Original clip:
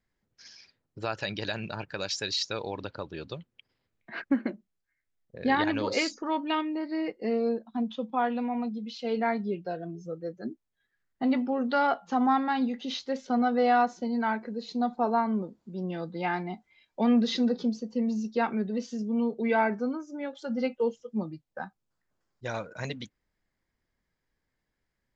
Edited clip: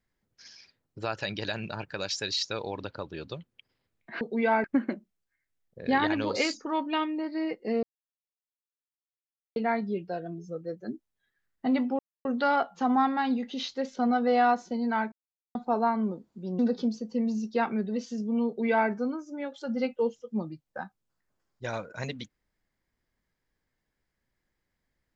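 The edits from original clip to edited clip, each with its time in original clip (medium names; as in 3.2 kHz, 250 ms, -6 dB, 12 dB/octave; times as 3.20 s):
7.40–9.13 s: mute
11.56 s: insert silence 0.26 s
14.43–14.86 s: mute
15.90–17.40 s: delete
19.28–19.71 s: copy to 4.21 s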